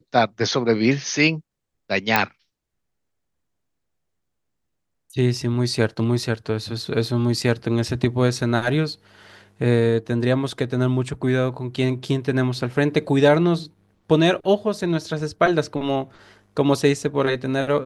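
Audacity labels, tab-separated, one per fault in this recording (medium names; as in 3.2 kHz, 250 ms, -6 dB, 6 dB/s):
2.160000	2.160000	pop -2 dBFS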